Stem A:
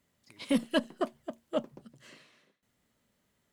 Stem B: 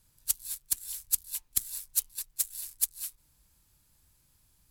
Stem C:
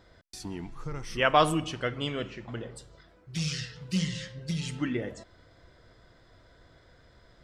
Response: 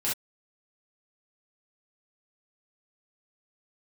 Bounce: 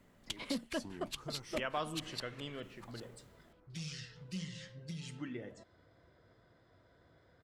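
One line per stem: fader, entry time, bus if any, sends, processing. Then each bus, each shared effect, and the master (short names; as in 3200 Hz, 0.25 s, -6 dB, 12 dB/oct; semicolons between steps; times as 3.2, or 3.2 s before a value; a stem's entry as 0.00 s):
-9.0 dB, 0.00 s, no send, three-band squash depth 70%
-3.0 dB, 0.00 s, no send, stepped low-pass 10 Hz 420–4400 Hz
-6.0 dB, 0.40 s, no send, HPF 84 Hz; compressor 1.5:1, threshold -45 dBFS, peak gain reduction 10.5 dB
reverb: off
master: mismatched tape noise reduction decoder only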